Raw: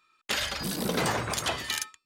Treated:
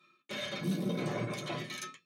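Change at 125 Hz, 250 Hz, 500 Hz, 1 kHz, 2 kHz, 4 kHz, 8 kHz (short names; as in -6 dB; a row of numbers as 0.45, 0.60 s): -1.0, -0.5, -4.5, -10.5, -9.5, -11.0, -14.5 dB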